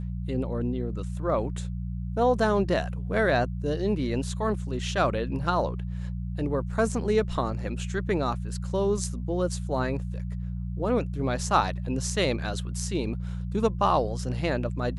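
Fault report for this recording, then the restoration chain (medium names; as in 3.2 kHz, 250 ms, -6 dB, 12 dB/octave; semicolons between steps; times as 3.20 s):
hum 60 Hz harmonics 3 -32 dBFS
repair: de-hum 60 Hz, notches 3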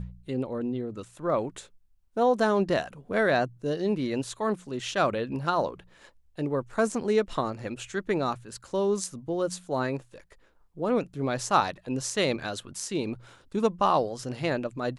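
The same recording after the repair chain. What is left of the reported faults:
nothing left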